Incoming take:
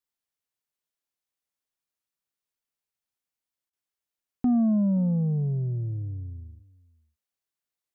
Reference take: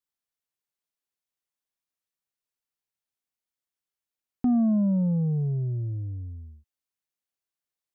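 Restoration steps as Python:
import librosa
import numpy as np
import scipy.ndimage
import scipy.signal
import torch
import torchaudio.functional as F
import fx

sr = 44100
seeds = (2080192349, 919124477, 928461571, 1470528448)

y = fx.fix_interpolate(x, sr, at_s=(3.7,), length_ms=29.0)
y = fx.fix_echo_inverse(y, sr, delay_ms=523, level_db=-22.0)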